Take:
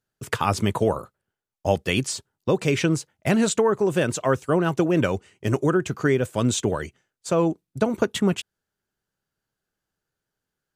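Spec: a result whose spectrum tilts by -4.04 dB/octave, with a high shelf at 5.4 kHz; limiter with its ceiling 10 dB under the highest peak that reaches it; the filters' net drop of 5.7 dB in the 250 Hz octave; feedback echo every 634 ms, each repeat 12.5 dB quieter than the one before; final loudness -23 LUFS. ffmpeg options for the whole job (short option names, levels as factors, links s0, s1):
-af "equalizer=f=250:t=o:g=-8.5,highshelf=f=5400:g=8,alimiter=limit=0.178:level=0:latency=1,aecho=1:1:634|1268|1902:0.237|0.0569|0.0137,volume=1.58"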